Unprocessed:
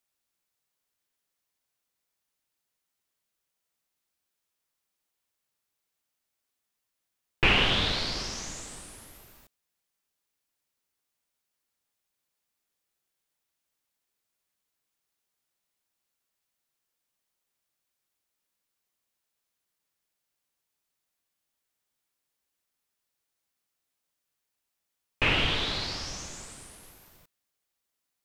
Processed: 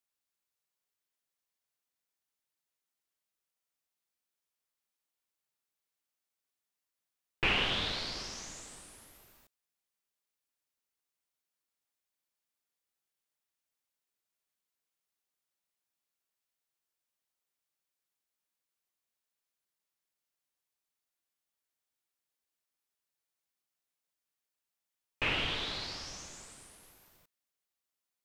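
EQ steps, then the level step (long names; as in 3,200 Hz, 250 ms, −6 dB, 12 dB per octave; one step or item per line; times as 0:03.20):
low-shelf EQ 220 Hz −4.5 dB
−6.5 dB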